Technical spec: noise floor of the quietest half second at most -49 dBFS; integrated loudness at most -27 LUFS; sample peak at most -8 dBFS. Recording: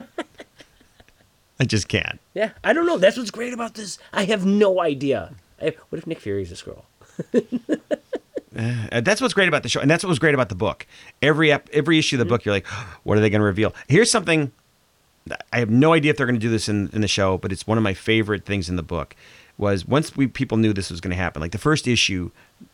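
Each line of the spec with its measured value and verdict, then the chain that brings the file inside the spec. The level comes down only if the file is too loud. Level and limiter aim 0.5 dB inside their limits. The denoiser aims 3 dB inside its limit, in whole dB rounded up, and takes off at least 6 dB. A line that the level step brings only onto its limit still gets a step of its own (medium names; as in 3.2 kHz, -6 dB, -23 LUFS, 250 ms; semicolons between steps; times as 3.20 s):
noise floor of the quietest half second -61 dBFS: pass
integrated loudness -21.0 LUFS: fail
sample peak -4.5 dBFS: fail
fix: trim -6.5 dB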